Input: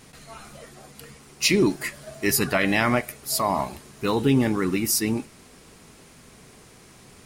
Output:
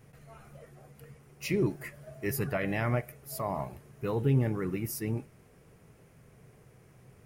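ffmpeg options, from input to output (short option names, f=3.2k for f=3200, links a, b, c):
-af "equalizer=f=125:t=o:w=1:g=10,equalizer=f=250:t=o:w=1:g=-6,equalizer=f=500:t=o:w=1:g=4,equalizer=f=1k:t=o:w=1:g=-4,equalizer=f=4k:t=o:w=1:g=-12,equalizer=f=8k:t=o:w=1:g=-9,volume=-8.5dB"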